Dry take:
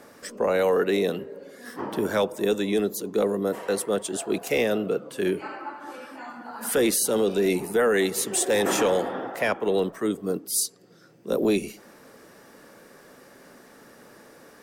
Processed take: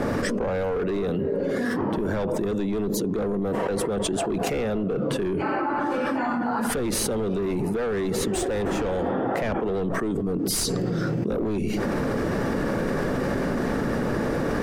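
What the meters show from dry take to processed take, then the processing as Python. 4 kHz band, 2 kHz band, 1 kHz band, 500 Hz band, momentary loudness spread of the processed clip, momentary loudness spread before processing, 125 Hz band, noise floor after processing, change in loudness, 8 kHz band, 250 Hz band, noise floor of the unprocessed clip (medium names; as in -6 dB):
-1.0 dB, 0.0 dB, +3.5 dB, -1.0 dB, 1 LU, 16 LU, +9.5 dB, -27 dBFS, -1.0 dB, -3.5 dB, +4.0 dB, -52 dBFS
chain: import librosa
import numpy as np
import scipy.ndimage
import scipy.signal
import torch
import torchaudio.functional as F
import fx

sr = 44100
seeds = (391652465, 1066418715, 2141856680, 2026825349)

y = np.clip(10.0 ** (23.0 / 20.0) * x, -1.0, 1.0) / 10.0 ** (23.0 / 20.0)
y = fx.riaa(y, sr, side='playback')
y = fx.env_flatten(y, sr, amount_pct=100)
y = F.gain(torch.from_numpy(y), -7.0).numpy()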